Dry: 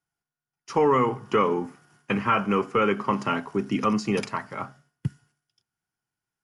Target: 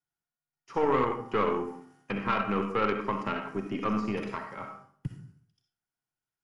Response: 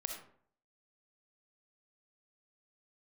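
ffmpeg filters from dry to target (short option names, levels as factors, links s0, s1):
-filter_complex "[1:a]atrim=start_sample=2205[s0];[0:a][s0]afir=irnorm=-1:irlink=0,acrossover=split=3200[s1][s2];[s2]acompressor=threshold=0.00224:ratio=4:attack=1:release=60[s3];[s1][s3]amix=inputs=2:normalize=0,aeval=exprs='0.316*(cos(1*acos(clip(val(0)/0.316,-1,1)))-cos(1*PI/2))+0.0398*(cos(3*acos(clip(val(0)/0.316,-1,1)))-cos(3*PI/2))+0.02*(cos(4*acos(clip(val(0)/0.316,-1,1)))-cos(4*PI/2))':c=same,volume=0.794"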